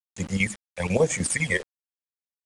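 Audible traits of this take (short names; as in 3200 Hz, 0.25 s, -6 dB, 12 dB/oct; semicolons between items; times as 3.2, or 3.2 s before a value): phasing stages 12, 1.1 Hz, lowest notch 240–3900 Hz; chopped level 10 Hz, depth 65%, duty 70%; a quantiser's noise floor 8-bit, dither none; IMA ADPCM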